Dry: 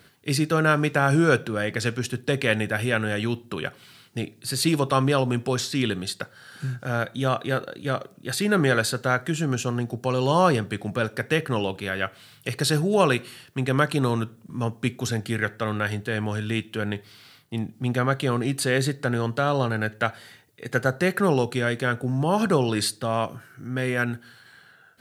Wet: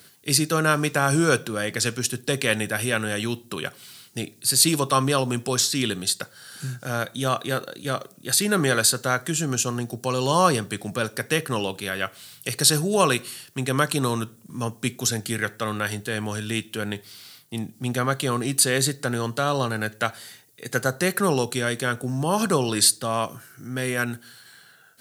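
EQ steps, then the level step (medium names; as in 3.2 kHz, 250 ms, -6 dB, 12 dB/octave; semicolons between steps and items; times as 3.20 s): high-pass 98 Hz; tone controls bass 0 dB, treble +13 dB; dynamic bell 1.1 kHz, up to +5 dB, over -45 dBFS, Q 7.1; -1.0 dB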